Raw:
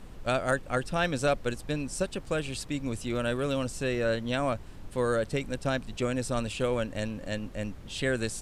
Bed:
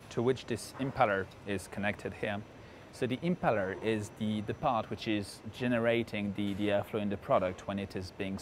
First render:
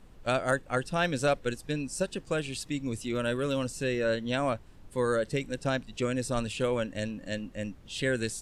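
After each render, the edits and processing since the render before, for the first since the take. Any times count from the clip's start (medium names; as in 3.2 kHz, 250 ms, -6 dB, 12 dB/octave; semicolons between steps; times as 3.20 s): noise print and reduce 8 dB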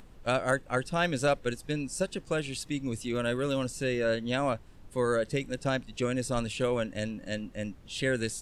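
upward compressor, threshold -48 dBFS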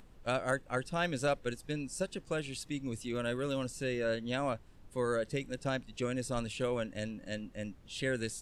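trim -5 dB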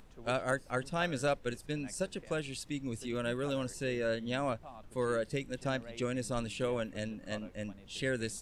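add bed -20 dB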